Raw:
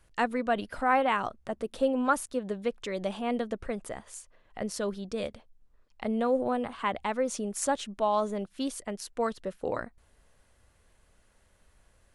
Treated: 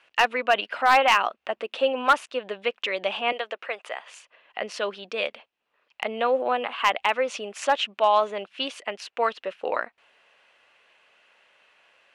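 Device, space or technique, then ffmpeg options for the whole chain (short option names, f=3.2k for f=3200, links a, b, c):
megaphone: -filter_complex "[0:a]asettb=1/sr,asplit=3[a][b][c];[a]atrim=end=3.324[d];[b]atrim=start=3.32:end=4.09,asetpts=PTS-STARTPTS,afade=t=in:d=0.004:c=qsin,afade=t=out:st=0.766:d=0.004:c=qsin,highpass=510[e];[c]atrim=start=4.086[f];[d][e]acrossfade=d=0.004:c1=hsin:c2=qsin[g];[g][f]acrossfade=d=0.004:c1=qsin:c2=hsin,highpass=610,lowpass=3.6k,equalizer=f=2.7k:t=o:w=0.56:g=11.5,asoftclip=type=hard:threshold=-18.5dB,volume=8.5dB"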